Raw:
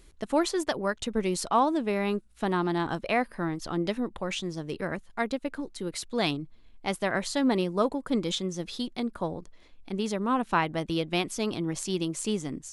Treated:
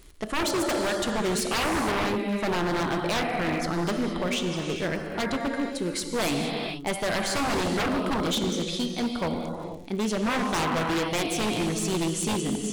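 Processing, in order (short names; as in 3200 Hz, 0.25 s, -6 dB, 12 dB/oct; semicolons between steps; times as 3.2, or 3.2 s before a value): non-linear reverb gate 0.5 s flat, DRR 3.5 dB; wavefolder -24.5 dBFS; crackle 67/s -44 dBFS; gain +4 dB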